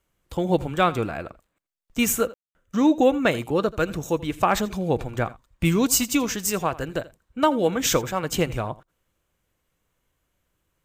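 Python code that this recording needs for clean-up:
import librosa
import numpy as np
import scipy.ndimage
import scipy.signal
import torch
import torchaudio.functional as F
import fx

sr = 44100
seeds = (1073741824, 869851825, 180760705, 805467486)

y = fx.fix_ambience(x, sr, seeds[0], print_start_s=9.22, print_end_s=9.72, start_s=2.34, end_s=2.55)
y = fx.fix_echo_inverse(y, sr, delay_ms=83, level_db=-19.5)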